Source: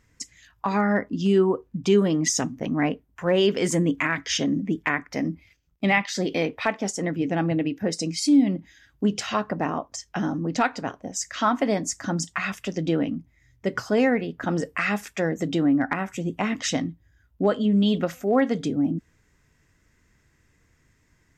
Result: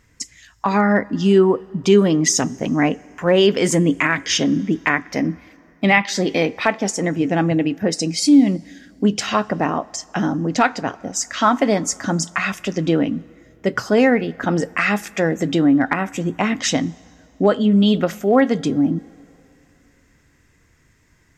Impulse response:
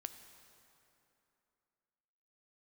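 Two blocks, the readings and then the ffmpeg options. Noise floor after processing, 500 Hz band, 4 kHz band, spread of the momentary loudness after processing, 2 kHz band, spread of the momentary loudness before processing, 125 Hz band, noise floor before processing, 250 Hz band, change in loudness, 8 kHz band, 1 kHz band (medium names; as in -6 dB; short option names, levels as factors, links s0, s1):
-57 dBFS, +6.0 dB, +6.5 dB, 9 LU, +6.5 dB, 9 LU, +5.5 dB, -65 dBFS, +6.0 dB, +6.0 dB, +6.5 dB, +6.5 dB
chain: -filter_complex "[0:a]asplit=2[s0][s1];[1:a]atrim=start_sample=2205,lowshelf=f=130:g=-11.5[s2];[s1][s2]afir=irnorm=-1:irlink=0,volume=0.398[s3];[s0][s3]amix=inputs=2:normalize=0,volume=1.68"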